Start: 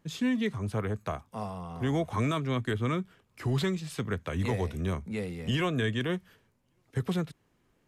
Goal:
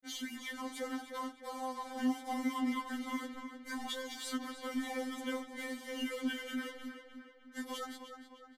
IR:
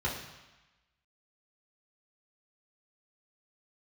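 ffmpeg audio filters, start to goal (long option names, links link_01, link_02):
-filter_complex "[0:a]equalizer=frequency=69:width_type=o:width=0.59:gain=-13.5,bandreject=frequency=60:width_type=h:width=6,bandreject=frequency=120:width_type=h:width=6,bandreject=frequency=180:width_type=h:width=6,bandreject=frequency=240:width_type=h:width=6,bandreject=frequency=300:width_type=h:width=6,bandreject=frequency=360:width_type=h:width=6,bandreject=frequency=420:width_type=h:width=6,alimiter=level_in=2.5dB:limit=-24dB:level=0:latency=1:release=18,volume=-2.5dB,acrossover=split=240|590[link_01][link_02][link_03];[link_01]acompressor=threshold=-47dB:ratio=4[link_04];[link_02]acompressor=threshold=-40dB:ratio=4[link_05];[link_03]acompressor=threshold=-42dB:ratio=4[link_06];[link_04][link_05][link_06]amix=inputs=3:normalize=0,acrusher=bits=7:mix=0:aa=0.5,asuperstop=centerf=2800:order=4:qfactor=7.4,asplit=2[link_07][link_08];[link_08]adelay=280,lowpass=frequency=4100:poles=1,volume=-8dB,asplit=2[link_09][link_10];[link_10]adelay=280,lowpass=frequency=4100:poles=1,volume=0.52,asplit=2[link_11][link_12];[link_12]adelay=280,lowpass=frequency=4100:poles=1,volume=0.52,asplit=2[link_13][link_14];[link_14]adelay=280,lowpass=frequency=4100:poles=1,volume=0.52,asplit=2[link_15][link_16];[link_16]adelay=280,lowpass=frequency=4100:poles=1,volume=0.52,asplit=2[link_17][link_18];[link_18]adelay=280,lowpass=frequency=4100:poles=1,volume=0.52[link_19];[link_07][link_09][link_11][link_13][link_15][link_17][link_19]amix=inputs=7:normalize=0,asetrate=40517,aresample=44100,aresample=32000,aresample=44100,afftfilt=real='re*3.46*eq(mod(b,12),0)':imag='im*3.46*eq(mod(b,12),0)':win_size=2048:overlap=0.75,volume=4.5dB"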